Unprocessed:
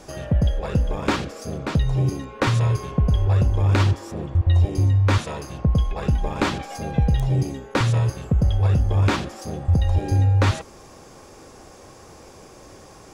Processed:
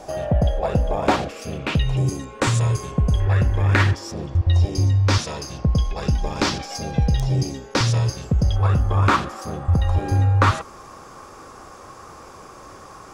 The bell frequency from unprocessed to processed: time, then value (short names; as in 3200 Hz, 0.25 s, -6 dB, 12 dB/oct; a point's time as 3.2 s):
bell +12.5 dB 0.73 oct
700 Hz
from 1.29 s 2700 Hz
from 1.97 s 7900 Hz
from 3.2 s 1800 Hz
from 3.95 s 5300 Hz
from 8.56 s 1200 Hz